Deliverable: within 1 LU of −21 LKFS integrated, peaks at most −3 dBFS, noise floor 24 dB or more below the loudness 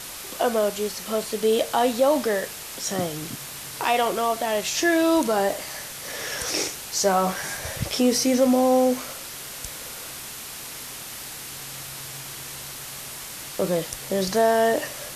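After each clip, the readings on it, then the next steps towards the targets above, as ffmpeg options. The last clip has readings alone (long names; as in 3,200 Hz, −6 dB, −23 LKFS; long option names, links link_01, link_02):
background noise floor −37 dBFS; target noise floor −49 dBFS; integrated loudness −24.5 LKFS; sample peak −9.0 dBFS; target loudness −21.0 LKFS
→ -af "afftdn=noise_reduction=12:noise_floor=-37"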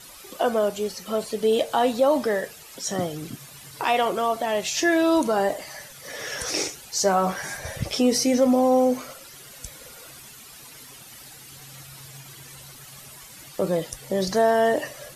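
background noise floor −45 dBFS; target noise floor −48 dBFS
→ -af "afftdn=noise_reduction=6:noise_floor=-45"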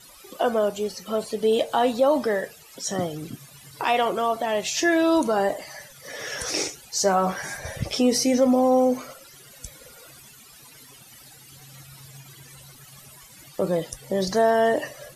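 background noise floor −49 dBFS; integrated loudness −23.5 LKFS; sample peak −9.5 dBFS; target loudness −21.0 LKFS
→ -af "volume=2.5dB"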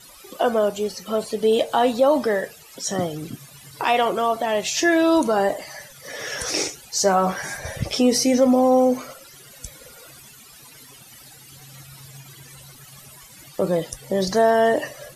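integrated loudness −21.0 LKFS; sample peak −7.0 dBFS; background noise floor −46 dBFS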